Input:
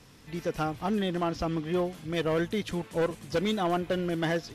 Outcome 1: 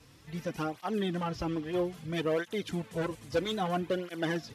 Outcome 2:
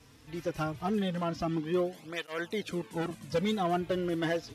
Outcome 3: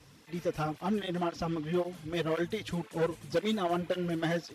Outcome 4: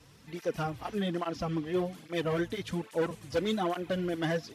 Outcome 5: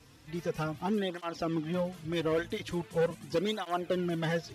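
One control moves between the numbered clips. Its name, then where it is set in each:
through-zero flanger with one copy inverted, nulls at: 0.61, 0.22, 1.9, 1.2, 0.41 Hertz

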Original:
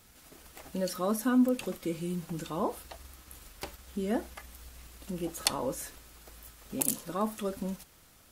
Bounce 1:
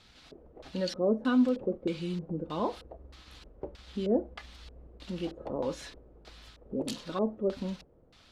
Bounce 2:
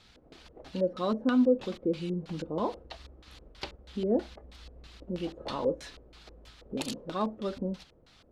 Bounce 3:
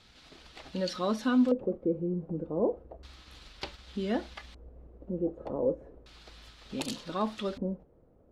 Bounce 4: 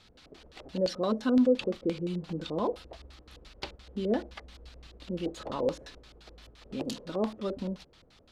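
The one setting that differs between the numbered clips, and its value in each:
auto-filter low-pass, speed: 1.6, 3.1, 0.33, 5.8 Hertz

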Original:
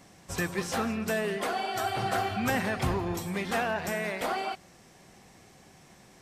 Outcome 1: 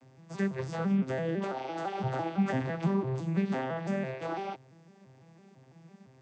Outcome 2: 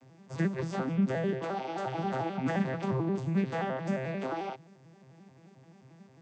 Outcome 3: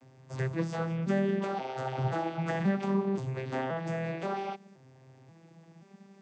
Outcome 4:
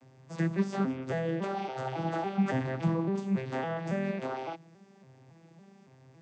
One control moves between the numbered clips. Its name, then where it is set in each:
vocoder with an arpeggio as carrier, a note every: 168, 88, 528, 279 milliseconds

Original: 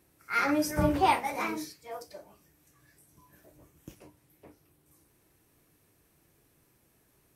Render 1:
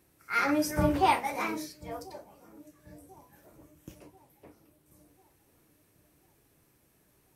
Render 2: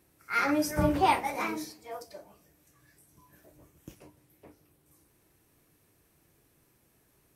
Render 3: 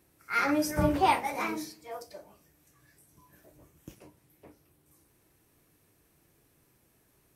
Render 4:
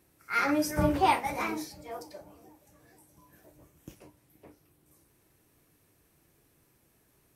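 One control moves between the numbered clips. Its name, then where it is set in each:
delay with a low-pass on its return, delay time: 1,040, 149, 101, 475 milliseconds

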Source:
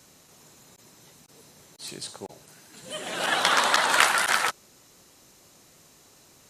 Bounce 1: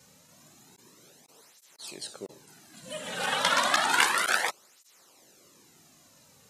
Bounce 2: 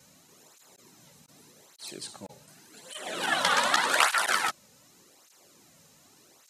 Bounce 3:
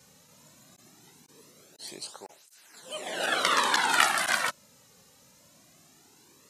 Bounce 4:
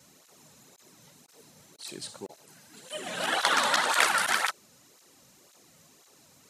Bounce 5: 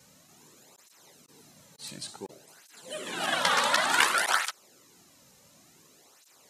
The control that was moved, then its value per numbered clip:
through-zero flanger with one copy inverted, nulls at: 0.31, 0.85, 0.2, 1.9, 0.56 Hertz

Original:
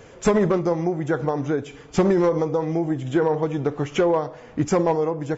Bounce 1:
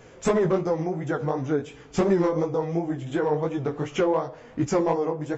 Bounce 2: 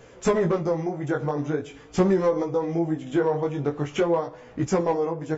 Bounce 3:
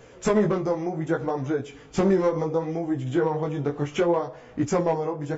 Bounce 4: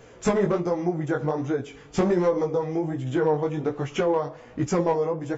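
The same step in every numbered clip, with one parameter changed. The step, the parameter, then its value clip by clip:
chorus effect, speed: 2.8, 0.43, 0.68, 1.3 Hertz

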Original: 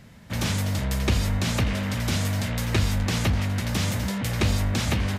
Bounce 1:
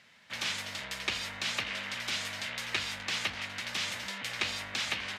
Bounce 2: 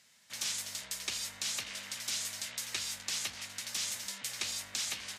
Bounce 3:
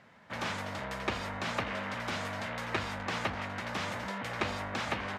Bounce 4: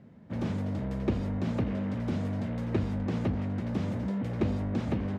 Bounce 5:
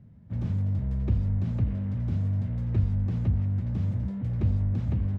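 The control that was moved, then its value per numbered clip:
resonant band-pass, frequency: 2,800, 7,200, 1,100, 300, 100 Hertz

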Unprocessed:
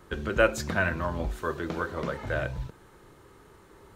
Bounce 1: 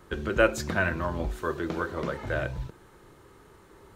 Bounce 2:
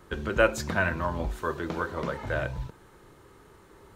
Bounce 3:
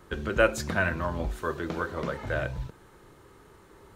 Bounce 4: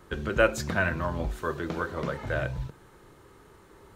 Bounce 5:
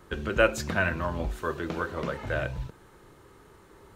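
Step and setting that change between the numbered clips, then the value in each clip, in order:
dynamic equaliser, frequency: 350, 940, 9,800, 140, 2,700 Hertz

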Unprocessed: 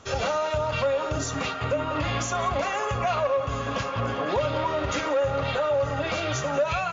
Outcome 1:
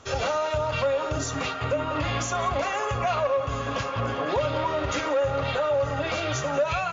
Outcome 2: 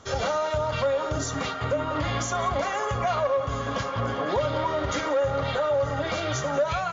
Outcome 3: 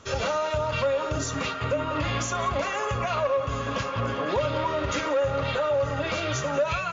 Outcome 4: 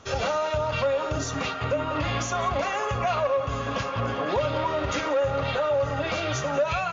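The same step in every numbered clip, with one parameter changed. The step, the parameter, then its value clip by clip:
notch filter, centre frequency: 200, 2,600, 750, 7,500 Hertz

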